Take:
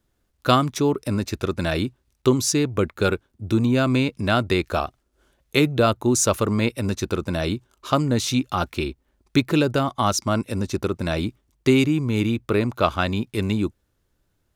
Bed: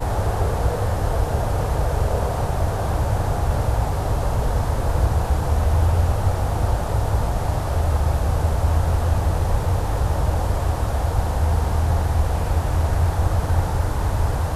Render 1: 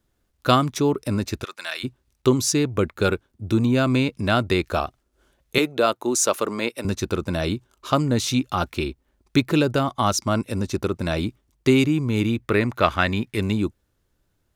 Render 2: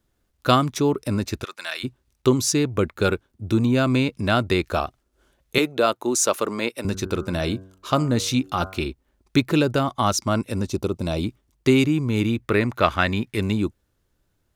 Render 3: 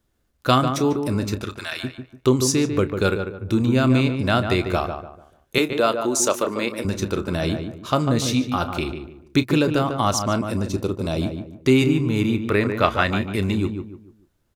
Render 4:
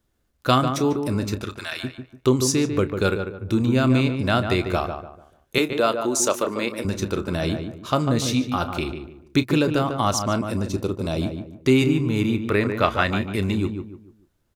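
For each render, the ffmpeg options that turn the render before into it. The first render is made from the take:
-filter_complex "[0:a]asplit=3[s0][s1][s2];[s0]afade=t=out:st=1.43:d=0.02[s3];[s1]highpass=1300,afade=t=in:st=1.43:d=0.02,afade=t=out:st=1.83:d=0.02[s4];[s2]afade=t=in:st=1.83:d=0.02[s5];[s3][s4][s5]amix=inputs=3:normalize=0,asettb=1/sr,asplit=3[s6][s7][s8];[s6]atrim=end=5.584[s9];[s7]atrim=start=5.58:end=6.85,asetpts=PTS-STARTPTS,afade=t=in:d=0.004:c=qsin,afade=t=out:st=1.266:d=0.004:c=qsin,highpass=330[s10];[s8]atrim=start=6.846[s11];[s9][s10]acrossfade=d=0.004:c1=hsin:c2=qsin[s12];[s12][s11]acrossfade=d=0.004:c1=qsin:c2=hsin,asettb=1/sr,asplit=3[s13][s14][s15];[s13]atrim=end=12.424[s16];[s14]atrim=start=12.42:end=13.38,asetpts=PTS-STARTPTS,afade=t=in:d=0.004:c=qsin,afade=t=out:st=0.956:d=0.004:c=qsin,equalizer=f=1900:t=o:w=0.63:g=9[s17];[s15]atrim=start=13.376[s18];[s16][s17]acrossfade=d=0.004:c1=hsin:c2=qsin[s19];[s19][s18]acrossfade=d=0.004:c1=qsin:c2=hsin"
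-filter_complex "[0:a]asettb=1/sr,asplit=3[s0][s1][s2];[s0]atrim=end=6.894[s3];[s1]atrim=start=6.89:end=8.86,asetpts=PTS-STARTPTS,afade=t=in:d=0.004:c=qsin,afade=t=out:st=1.966:d=0.004:c=qsin,bandreject=f=94.82:t=h:w=4,bandreject=f=189.64:t=h:w=4,bandreject=f=284.46:t=h:w=4,bandreject=f=379.28:t=h:w=4,bandreject=f=474.1:t=h:w=4,bandreject=f=568.92:t=h:w=4,bandreject=f=663.74:t=h:w=4,bandreject=f=758.56:t=h:w=4,bandreject=f=853.38:t=h:w=4,bandreject=f=948.2:t=h:w=4,bandreject=f=1043.02:t=h:w=4,bandreject=f=1137.84:t=h:w=4,bandreject=f=1232.66:t=h:w=4,bandreject=f=1327.48:t=h:w=4,bandreject=f=1422.3:t=h:w=4,bandreject=f=1517.12:t=h:w=4,bandreject=f=1611.94:t=h:w=4[s4];[s2]atrim=start=8.856[s5];[s3][s4]acrossfade=d=0.004:c1=hsin:c2=qsin[s6];[s6][s5]acrossfade=d=0.004:c1=qsin:c2=hsin,asettb=1/sr,asplit=3[s7][s8][s9];[s7]atrim=end=10.684[s10];[s8]atrim=start=10.68:end=11.24,asetpts=PTS-STARTPTS,afade=t=in:d=0.004:c=qsin,afade=t=out:st=0.556:d=0.004:c=qsin,equalizer=f=1700:w=1.7:g=-12[s11];[s9]atrim=start=11.236[s12];[s10][s11]acrossfade=d=0.004:c1=hsin:c2=qsin[s13];[s13][s12]acrossfade=d=0.004:c1=qsin:c2=hsin"
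-filter_complex "[0:a]asplit=2[s0][s1];[s1]adelay=31,volume=0.211[s2];[s0][s2]amix=inputs=2:normalize=0,asplit=2[s3][s4];[s4]adelay=146,lowpass=f=1700:p=1,volume=0.473,asplit=2[s5][s6];[s6]adelay=146,lowpass=f=1700:p=1,volume=0.35,asplit=2[s7][s8];[s8]adelay=146,lowpass=f=1700:p=1,volume=0.35,asplit=2[s9][s10];[s10]adelay=146,lowpass=f=1700:p=1,volume=0.35[s11];[s3][s5][s7][s9][s11]amix=inputs=5:normalize=0"
-af "volume=0.891,alimiter=limit=0.708:level=0:latency=1"

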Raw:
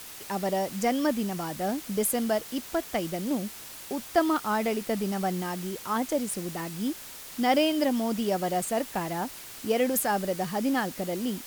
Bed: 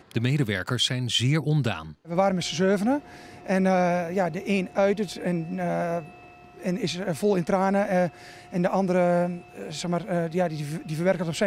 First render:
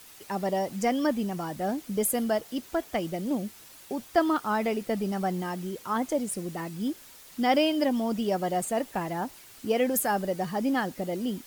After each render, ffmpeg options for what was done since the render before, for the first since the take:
-af "afftdn=nr=8:nf=-43"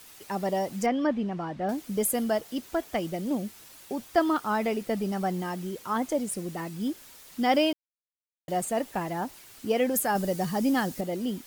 -filter_complex "[0:a]asettb=1/sr,asplit=3[s0][s1][s2];[s0]atrim=end=0.864[s3];[s1]atrim=start=0.86:end=1.69,asetpts=PTS-STARTPTS,afade=t=in:d=0.004:c=qsin,afade=t=out:st=0.826:d=0.004:c=qsin,lowpass=3000[s4];[s2]atrim=start=1.686[s5];[s3][s4]acrossfade=d=0.004:c1=hsin:c2=qsin[s6];[s6][s5]acrossfade=d=0.004:c1=qsin:c2=hsin,asettb=1/sr,asplit=3[s7][s8][s9];[s7]atrim=end=10.154[s10];[s8]atrim=start=10.15:end=11.01,asetpts=PTS-STARTPTS,afade=t=in:d=0.004:c=qsin,afade=t=out:st=0.856:d=0.004:c=qsin,bass=f=250:g=5,treble=f=4000:g=7[s11];[s9]atrim=start=11.006[s12];[s10][s11]acrossfade=d=0.004:c1=hsin:c2=qsin[s13];[s13][s12]acrossfade=d=0.004:c1=qsin:c2=hsin,asplit=3[s14][s15][s16];[s14]atrim=end=7.73,asetpts=PTS-STARTPTS,afade=t=out:st=7.726:d=0.004:c=hsin[s17];[s15]atrim=start=7.73:end=8.48,asetpts=PTS-STARTPTS,volume=0[s18];[s16]atrim=start=8.48,asetpts=PTS-STARTPTS,afade=t=in:d=0.004:c=hsin[s19];[s17][s18][s19]concat=n=3:v=0:a=1"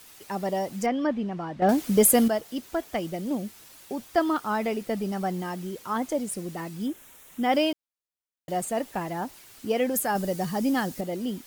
-filter_complex "[0:a]asettb=1/sr,asplit=3[s0][s1][s2];[s0]atrim=end=6.864[s3];[s1]atrim=start=6.86:end=7.53,asetpts=PTS-STARTPTS,afade=t=in:d=0.004:c=qsin,afade=t=out:st=0.666:d=0.004:c=qsin,equalizer=f=4700:t=o:w=0.42:g=-14[s4];[s2]atrim=start=7.526[s5];[s3][s4]acrossfade=d=0.004:c1=hsin:c2=qsin[s6];[s6][s5]acrossfade=d=0.004:c1=qsin:c2=hsin,asplit=3[s7][s8][s9];[s7]atrim=end=1.622[s10];[s8]atrim=start=1.618:end=2.282,asetpts=PTS-STARTPTS,volume=2.66[s11];[s9]atrim=start=2.278[s12];[s10][s11]acrossfade=d=0.004:c1=hsin:c2=hsin[s13];[s13][s12]acrossfade=d=0.004:c1=hsin:c2=hsin"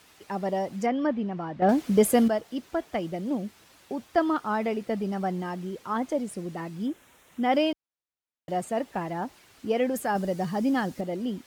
-af "highpass=42,aemphasis=mode=reproduction:type=50kf"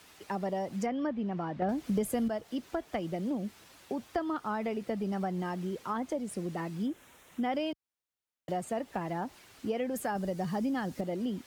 -filter_complex "[0:a]acrossover=split=130[s0][s1];[s1]acompressor=threshold=0.0282:ratio=4[s2];[s0][s2]amix=inputs=2:normalize=0"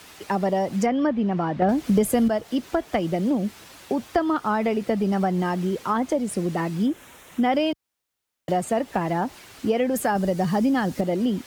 -af "volume=3.35"

